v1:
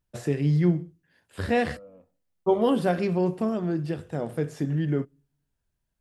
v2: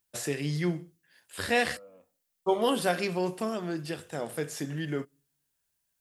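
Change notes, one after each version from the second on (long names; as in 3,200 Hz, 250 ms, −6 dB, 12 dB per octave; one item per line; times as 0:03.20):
master: add spectral tilt +3.5 dB per octave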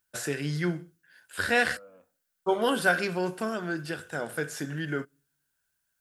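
master: add parametric band 1,500 Hz +14.5 dB 0.25 octaves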